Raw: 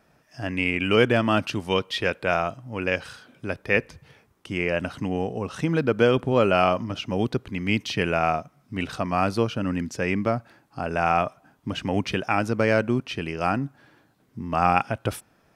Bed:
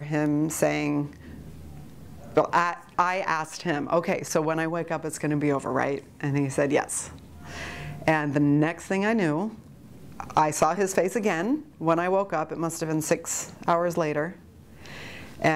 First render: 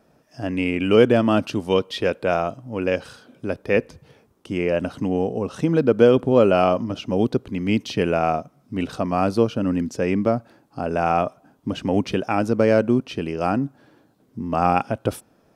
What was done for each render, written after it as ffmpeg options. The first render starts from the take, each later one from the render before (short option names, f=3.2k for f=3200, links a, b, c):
-af "equalizer=f=250:t=o:w=1:g=5,equalizer=f=500:t=o:w=1:g=5,equalizer=f=2k:t=o:w=1:g=-5"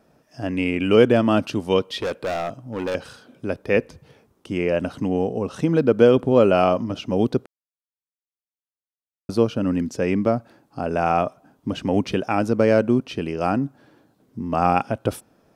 -filter_complex "[0:a]asettb=1/sr,asplit=3[a][b][c];[a]atrim=end=1.984[d];[b]atrim=start=1.98:end=2.95,asetpts=PTS-STARTPTS,afade=t=in:d=0.004:c=qsin,afade=t=out:st=0.966:d=0.004:c=qsin,asoftclip=type=hard:threshold=-21.5dB[e];[c]atrim=start=2.946[f];[d][e]acrossfade=d=0.004:c1=hsin:c2=qsin[g];[g][f]acrossfade=d=0.004:c1=qsin:c2=hsin,asplit=3[h][i][j];[h]atrim=end=7.46,asetpts=PTS-STARTPTS,afade=t=out:st=7.456:d=0.004:c=hsin[k];[i]atrim=start=7.46:end=9.29,asetpts=PTS-STARTPTS,volume=0[l];[j]atrim=start=9.29,asetpts=PTS-STARTPTS,afade=t=in:d=0.004:c=hsin[m];[k][l][m]concat=n=3:v=0:a=1"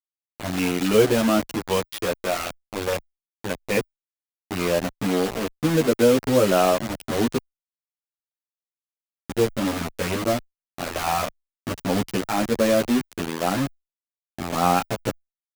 -filter_complex "[0:a]acrusher=bits=3:mix=0:aa=0.000001,asplit=2[a][b];[b]adelay=10.3,afreqshift=0.71[c];[a][c]amix=inputs=2:normalize=1"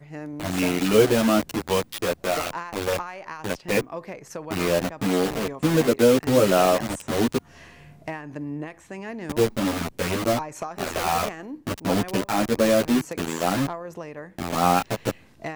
-filter_complex "[1:a]volume=-11dB[a];[0:a][a]amix=inputs=2:normalize=0"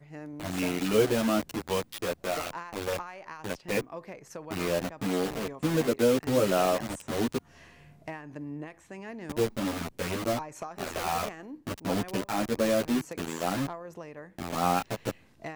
-af "volume=-6.5dB"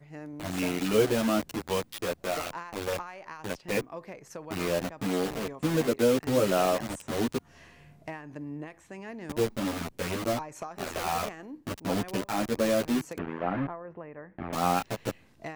-filter_complex "[0:a]asettb=1/sr,asplit=3[a][b][c];[a]atrim=end=13.184[d];[b]atrim=start=13.18:end=14.53,asetpts=PTS-STARTPTS,afade=t=in:d=0.004:c=qsin,afade=t=out:st=1.346:d=0.004:c=qsin,lowpass=f=2.2k:w=0.5412,lowpass=f=2.2k:w=1.3066[e];[c]atrim=start=14.526[f];[d][e]acrossfade=d=0.004:c1=hsin:c2=qsin[g];[g][f]acrossfade=d=0.004:c1=qsin:c2=hsin"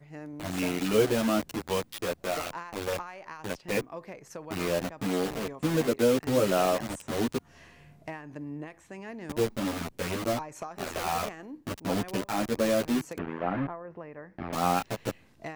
-filter_complex "[0:a]asettb=1/sr,asplit=3[a][b][c];[a]atrim=end=13.934[d];[b]atrim=start=13.93:end=14.53,asetpts=PTS-STARTPTS,afade=t=in:d=0.004:c=qsin,afade=t=out:st=0.596:d=0.004:c=qsin,equalizer=f=5.1k:w=1.6:g=10.5[e];[c]atrim=start=14.526[f];[d][e]acrossfade=d=0.004:c1=hsin:c2=qsin[g];[g][f]acrossfade=d=0.004:c1=qsin:c2=hsin"